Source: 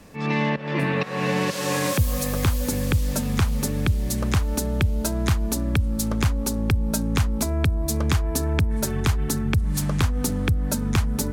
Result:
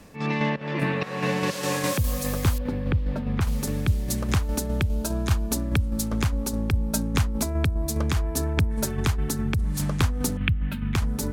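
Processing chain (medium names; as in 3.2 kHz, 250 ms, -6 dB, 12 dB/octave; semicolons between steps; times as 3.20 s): 10.37–10.95 s: FFT filter 190 Hz 0 dB, 510 Hz -16 dB, 2.9 kHz +10 dB, 6 kHz -27 dB, 16 kHz -11 dB; tremolo saw down 4.9 Hz, depth 45%; 2.58–3.41 s: distance through air 420 m; 4.88–5.52 s: band-stop 2 kHz, Q 8.9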